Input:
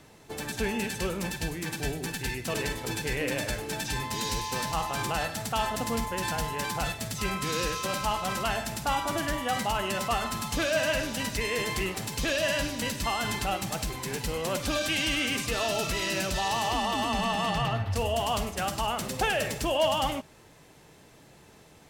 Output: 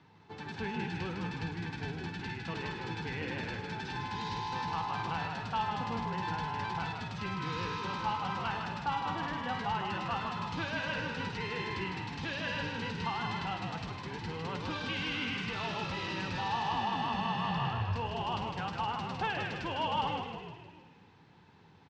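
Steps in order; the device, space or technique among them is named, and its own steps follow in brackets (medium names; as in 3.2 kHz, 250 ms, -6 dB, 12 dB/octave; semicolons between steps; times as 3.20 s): frequency-shifting delay pedal into a guitar cabinet (frequency-shifting echo 155 ms, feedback 55%, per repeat -55 Hz, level -4.5 dB; cabinet simulation 91–4500 Hz, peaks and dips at 100 Hz +9 dB, 170 Hz +8 dB, 610 Hz -10 dB, 910 Hz +9 dB, 1.5 kHz +3 dB); trim -9 dB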